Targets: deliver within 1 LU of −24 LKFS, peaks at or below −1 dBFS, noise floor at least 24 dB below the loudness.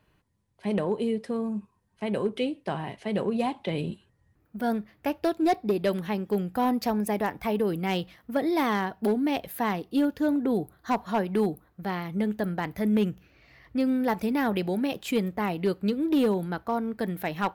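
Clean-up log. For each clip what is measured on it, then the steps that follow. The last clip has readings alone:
share of clipped samples 0.5%; peaks flattened at −17.5 dBFS; integrated loudness −28.0 LKFS; sample peak −17.5 dBFS; target loudness −24.0 LKFS
→ clipped peaks rebuilt −17.5 dBFS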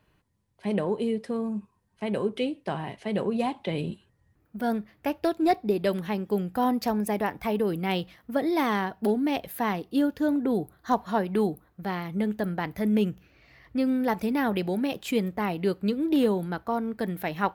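share of clipped samples 0.0%; integrated loudness −28.0 LKFS; sample peak −10.0 dBFS; target loudness −24.0 LKFS
→ level +4 dB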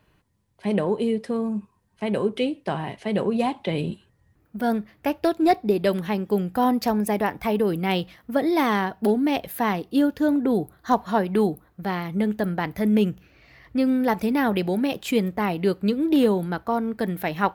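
integrated loudness −24.0 LKFS; sample peak −6.0 dBFS; background noise floor −65 dBFS

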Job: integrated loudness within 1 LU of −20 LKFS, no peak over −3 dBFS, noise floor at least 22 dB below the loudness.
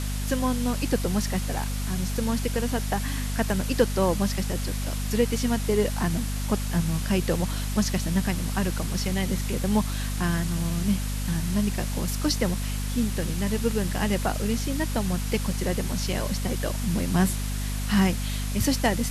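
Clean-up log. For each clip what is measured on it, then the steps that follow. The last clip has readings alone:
mains hum 50 Hz; hum harmonics up to 250 Hz; level of the hum −26 dBFS; background noise floor −29 dBFS; target noise floor −49 dBFS; integrated loudness −26.5 LKFS; sample peak −6.0 dBFS; target loudness −20.0 LKFS
→ hum removal 50 Hz, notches 5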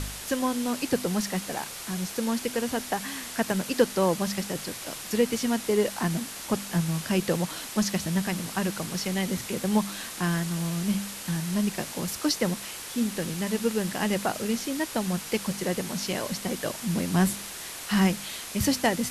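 mains hum none found; background noise floor −39 dBFS; target noise floor −50 dBFS
→ broadband denoise 11 dB, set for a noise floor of −39 dBFS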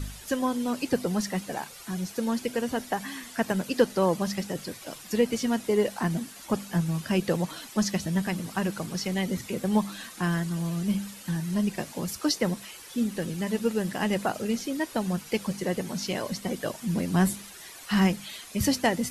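background noise floor −46 dBFS; target noise floor −51 dBFS
→ broadband denoise 6 dB, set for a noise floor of −46 dBFS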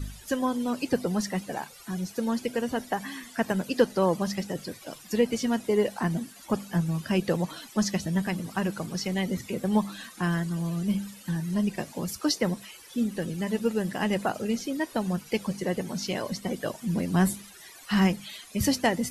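background noise floor −49 dBFS; target noise floor −51 dBFS
→ broadband denoise 6 dB, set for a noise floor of −49 dBFS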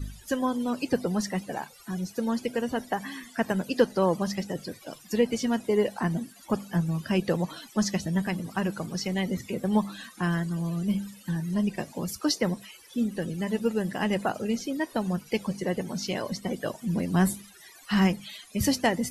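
background noise floor −52 dBFS; integrated loudness −29.0 LKFS; sample peak −7.0 dBFS; target loudness −20.0 LKFS
→ level +9 dB
brickwall limiter −3 dBFS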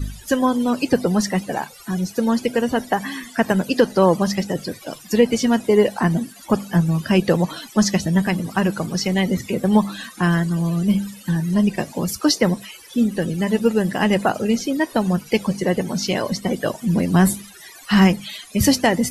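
integrated loudness −20.0 LKFS; sample peak −3.0 dBFS; background noise floor −43 dBFS

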